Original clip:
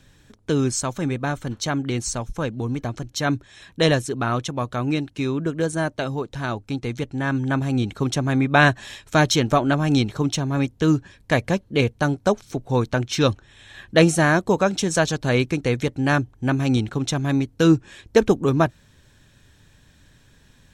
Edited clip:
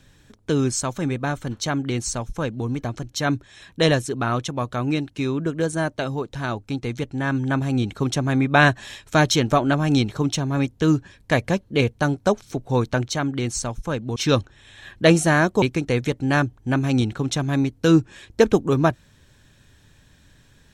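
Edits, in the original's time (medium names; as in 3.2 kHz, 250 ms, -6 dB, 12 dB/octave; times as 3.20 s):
1.59–2.67 s: copy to 13.08 s
14.54–15.38 s: delete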